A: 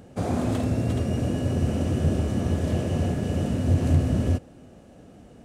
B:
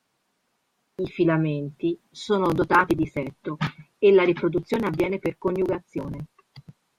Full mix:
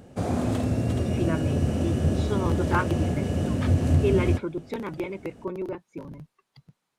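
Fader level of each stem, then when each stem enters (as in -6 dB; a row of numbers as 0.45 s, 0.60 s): -0.5 dB, -8.0 dB; 0.00 s, 0.00 s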